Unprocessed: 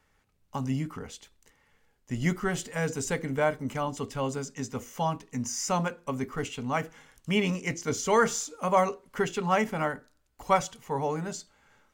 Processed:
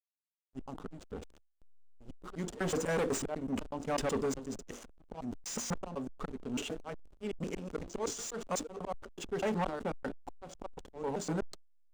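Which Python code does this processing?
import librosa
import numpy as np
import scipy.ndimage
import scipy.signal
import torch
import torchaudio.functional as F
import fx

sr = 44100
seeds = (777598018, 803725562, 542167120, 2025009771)

y = fx.block_reorder(x, sr, ms=124.0, group=2)
y = fx.auto_swell(y, sr, attack_ms=448.0)
y = fx.backlash(y, sr, play_db=-41.0)
y = fx.graphic_eq(y, sr, hz=(125, 1000, 2000, 8000), db=(-11, -4, -9, 8))
y = np.clip(10.0 ** (36.0 / 20.0) * y, -1.0, 1.0) / 10.0 ** (36.0 / 20.0)
y = fx.bass_treble(y, sr, bass_db=-2, treble_db=-13)
y = fx.sustainer(y, sr, db_per_s=110.0)
y = F.gain(torch.from_numpy(y), 8.0).numpy()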